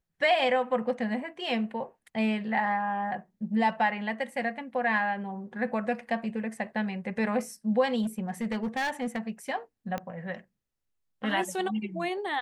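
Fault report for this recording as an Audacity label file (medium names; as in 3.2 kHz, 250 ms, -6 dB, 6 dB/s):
8.020000	9.300000	clipped -26 dBFS
9.980000	9.980000	pop -19 dBFS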